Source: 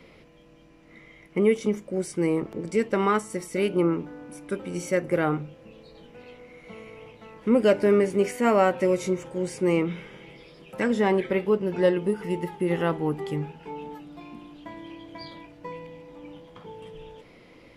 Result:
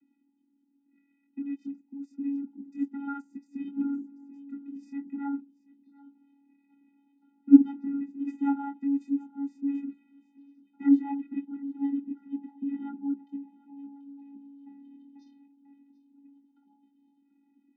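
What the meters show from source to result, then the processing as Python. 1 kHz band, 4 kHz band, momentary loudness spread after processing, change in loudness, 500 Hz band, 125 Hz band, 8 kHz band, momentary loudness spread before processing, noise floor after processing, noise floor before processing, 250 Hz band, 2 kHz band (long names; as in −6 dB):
−13.5 dB, below −25 dB, 22 LU, −4.5 dB, below −30 dB, below −25 dB, below −30 dB, 22 LU, −71 dBFS, −53 dBFS, +0.5 dB, below −20 dB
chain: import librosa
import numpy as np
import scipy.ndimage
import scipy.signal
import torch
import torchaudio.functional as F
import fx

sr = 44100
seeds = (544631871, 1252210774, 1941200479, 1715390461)

p1 = fx.envelope_sharpen(x, sr, power=1.5)
p2 = fx.chorus_voices(p1, sr, voices=4, hz=0.34, base_ms=23, depth_ms=1.4, mix_pct=30)
p3 = fx.vocoder(p2, sr, bands=16, carrier='square', carrier_hz=280.0)
p4 = fx.peak_eq(p3, sr, hz=210.0, db=11.0, octaves=0.42)
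p5 = p4 + fx.echo_single(p4, sr, ms=736, db=-16.0, dry=0)
y = fx.upward_expand(p5, sr, threshold_db=-43.0, expansion=1.5)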